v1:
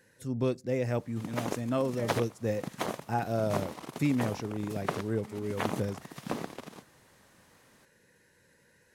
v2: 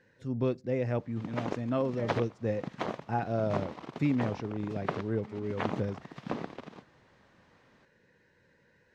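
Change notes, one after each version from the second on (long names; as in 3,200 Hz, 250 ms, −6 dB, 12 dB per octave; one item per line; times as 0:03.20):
master: add high-frequency loss of the air 180 metres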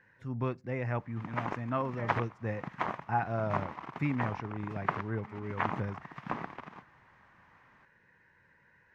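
master: add octave-band graphic EQ 250/500/1,000/2,000/4,000/8,000 Hz −4/−8/+7/+5/−8/−7 dB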